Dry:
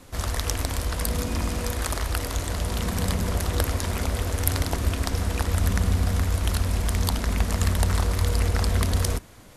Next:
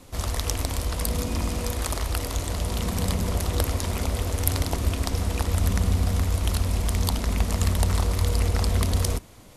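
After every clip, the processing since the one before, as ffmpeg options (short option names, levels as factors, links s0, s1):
-af "equalizer=f=1600:t=o:w=0.56:g=-5.5"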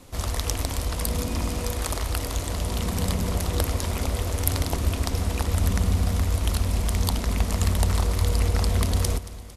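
-af "aecho=1:1:226|452|678|904|1130:0.141|0.0805|0.0459|0.0262|0.0149"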